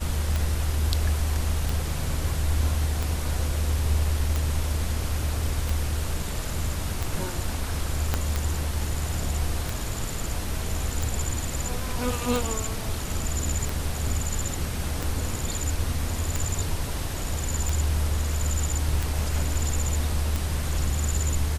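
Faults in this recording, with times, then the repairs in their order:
tick 45 rpm
8.14 pop -9 dBFS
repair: de-click

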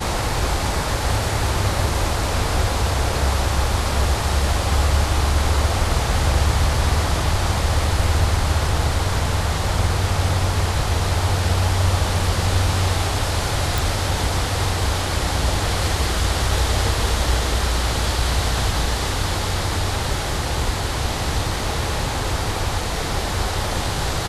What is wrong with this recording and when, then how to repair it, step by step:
13.78 pop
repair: de-click

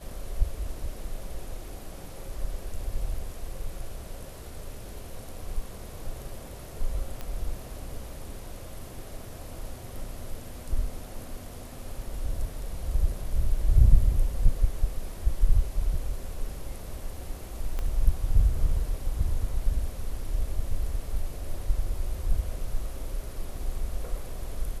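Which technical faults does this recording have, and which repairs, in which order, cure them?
7.21 pop -21 dBFS
17.79 pop -19 dBFS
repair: de-click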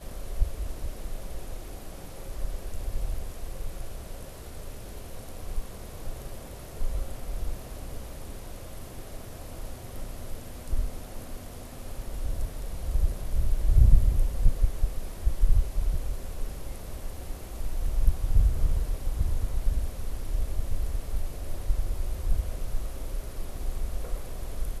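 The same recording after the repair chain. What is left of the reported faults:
17.79 pop

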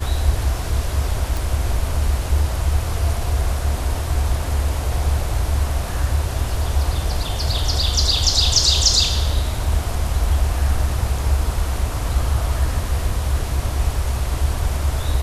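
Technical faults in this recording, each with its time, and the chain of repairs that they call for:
1.37 pop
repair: de-click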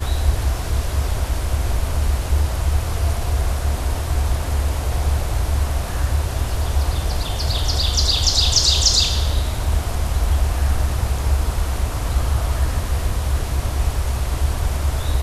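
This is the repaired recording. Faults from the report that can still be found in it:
none

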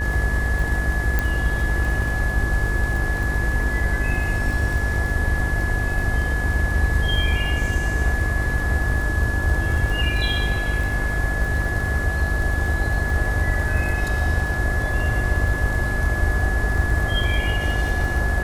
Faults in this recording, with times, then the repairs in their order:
buzz 50 Hz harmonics 28 -26 dBFS
crackle 30/s -27 dBFS
tone 1700 Hz -26 dBFS
1.19 pop -8 dBFS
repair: de-click; notch 1700 Hz, Q 30; de-hum 50 Hz, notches 28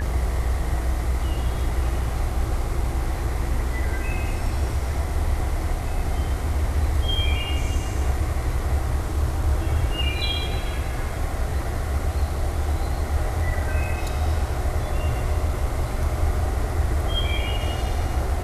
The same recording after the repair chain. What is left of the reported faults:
none

